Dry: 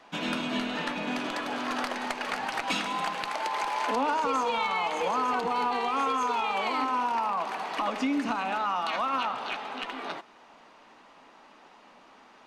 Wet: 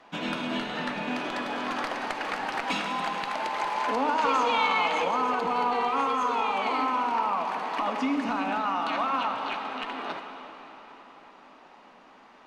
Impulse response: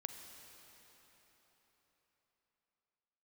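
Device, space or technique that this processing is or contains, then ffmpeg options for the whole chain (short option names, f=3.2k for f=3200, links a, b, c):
swimming-pool hall: -filter_complex "[1:a]atrim=start_sample=2205[a];[0:a][a]afir=irnorm=-1:irlink=0,highshelf=f=4.8k:g=-7.5,asettb=1/sr,asplit=3[b][c][d];[b]atrim=end=4.184[e];[c]atrim=start=4.18:end=5.04,asetpts=PTS-STARTPTS,afade=t=in:d=0.004:c=qsin,afade=t=out:st=0.856:d=0.004:c=qsin,equalizer=f=3.2k:t=o:w=2.5:g=6[f];[d]atrim=start=5.036[g];[e][f]acrossfade=d=0.004:c1=hsin:c2=qsin[h];[h][g]acrossfade=d=0.004:c1=qsin:c2=hsin,volume=4dB"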